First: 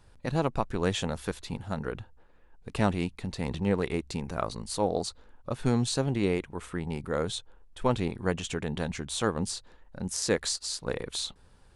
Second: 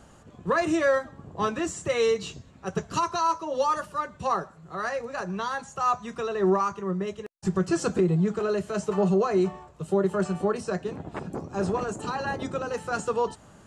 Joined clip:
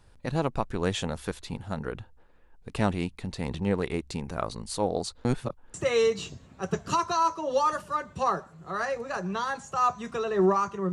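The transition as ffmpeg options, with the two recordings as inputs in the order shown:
ffmpeg -i cue0.wav -i cue1.wav -filter_complex "[0:a]apad=whole_dur=10.92,atrim=end=10.92,asplit=2[link_01][link_02];[link_01]atrim=end=5.252[link_03];[link_02]atrim=start=5.248:end=5.742,asetpts=PTS-STARTPTS,areverse[link_04];[1:a]atrim=start=1.778:end=6.96[link_05];[link_03][link_04]acrossfade=duration=0.004:curve1=hsin:curve2=hsin[link_06];[link_06][link_05]acrossfade=duration=0.004:curve1=hsin:curve2=hsin" out.wav

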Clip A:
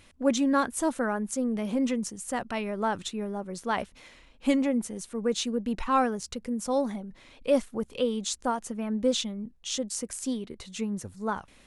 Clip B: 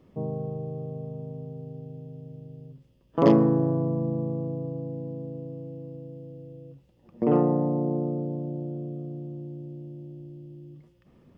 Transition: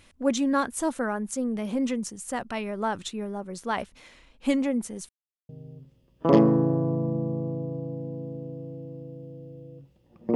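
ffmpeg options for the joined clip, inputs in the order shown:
ffmpeg -i cue0.wav -i cue1.wav -filter_complex "[0:a]apad=whole_dur=10.35,atrim=end=10.35,asplit=2[link_01][link_02];[link_01]atrim=end=5.09,asetpts=PTS-STARTPTS,afade=type=out:start_time=5.086:duration=0.004:curve=hsin[link_03];[link_02]atrim=start=5.09:end=5.49,asetpts=PTS-STARTPTS,volume=0[link_04];[1:a]atrim=start=2.42:end=7.28,asetpts=PTS-STARTPTS,afade=type=in:duration=0.004:curve=hsin[link_05];[link_03][link_04][link_05]concat=n=3:v=0:a=1" out.wav

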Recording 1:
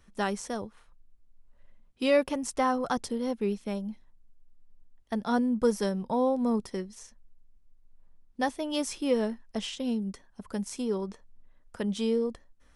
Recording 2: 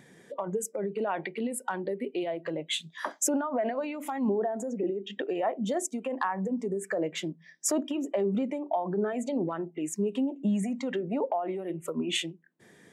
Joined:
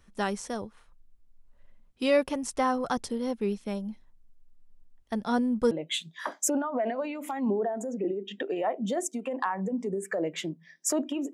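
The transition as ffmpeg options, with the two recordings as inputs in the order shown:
ffmpeg -i cue0.wav -i cue1.wav -filter_complex "[0:a]apad=whole_dur=11.33,atrim=end=11.33,atrim=end=5.712[link_01];[1:a]atrim=start=2.498:end=8.12[link_02];[link_01][link_02]acrossfade=duration=0.004:curve1=hsin:curve2=hsin" out.wav

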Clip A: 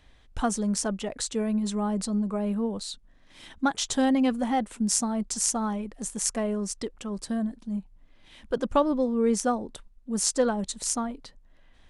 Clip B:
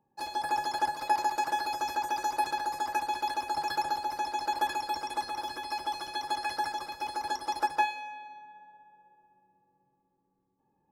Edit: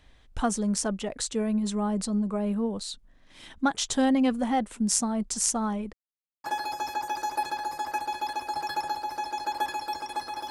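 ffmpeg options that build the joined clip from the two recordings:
ffmpeg -i cue0.wav -i cue1.wav -filter_complex "[0:a]apad=whole_dur=10.5,atrim=end=10.5,asplit=2[link_01][link_02];[link_01]atrim=end=5.93,asetpts=PTS-STARTPTS,afade=type=out:start_time=5.926:duration=0.004:curve=hsin[link_03];[link_02]atrim=start=5.93:end=6.44,asetpts=PTS-STARTPTS,volume=0[link_04];[1:a]atrim=start=1.45:end=5.51,asetpts=PTS-STARTPTS,afade=type=in:duration=0.004:curve=hsin[link_05];[link_03][link_04][link_05]concat=n=3:v=0:a=1" out.wav

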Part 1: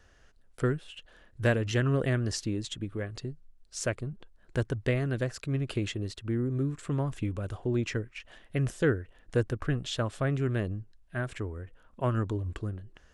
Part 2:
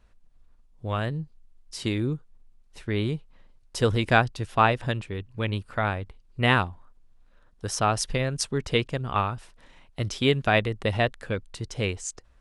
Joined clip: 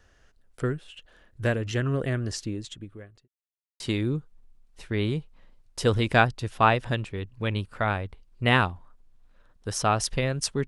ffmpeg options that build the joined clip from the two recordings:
ffmpeg -i cue0.wav -i cue1.wav -filter_complex "[0:a]apad=whole_dur=10.67,atrim=end=10.67,asplit=2[link_01][link_02];[link_01]atrim=end=3.28,asetpts=PTS-STARTPTS,afade=type=out:start_time=2.47:duration=0.81[link_03];[link_02]atrim=start=3.28:end=3.8,asetpts=PTS-STARTPTS,volume=0[link_04];[1:a]atrim=start=1.77:end=8.64,asetpts=PTS-STARTPTS,afade=type=in:duration=0.004:curve=hsin[link_05];[link_03][link_04][link_05]concat=n=3:v=0:a=1" out.wav

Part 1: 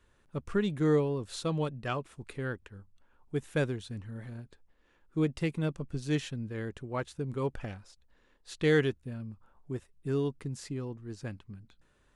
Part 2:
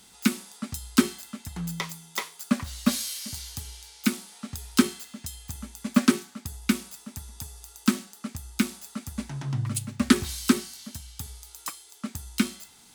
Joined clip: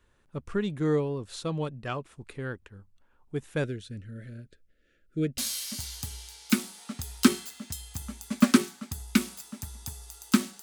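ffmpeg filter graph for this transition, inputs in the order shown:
ffmpeg -i cue0.wav -i cue1.wav -filter_complex "[0:a]asettb=1/sr,asplit=3[link_01][link_02][link_03];[link_01]atrim=end=3.644[link_04];[link_02]atrim=start=3.64:end=5.38,asetpts=PTS-STARTPTS,afade=type=in:duration=0.004:curve=qsin,afade=type=out:start_time=1.736:duration=0.004:curve=qsin,asuperstop=centerf=930:order=12:qfactor=1.4[link_05];[link_03]atrim=start=5.376[link_06];[link_04][link_05]acrossfade=duration=0.004:curve1=hsin:curve2=qsin[link_07];[link_07][link_06]acrossfade=duration=0.004:curve1=qsin:curve2=hsin,apad=whole_dur=10.62,atrim=end=10.62,atrim=end=5.382[link_08];[1:a]atrim=start=2.918:end=8.16[link_09];[link_08][link_09]acrossfade=duration=0.004:curve1=hsin:curve2=hsin" out.wav

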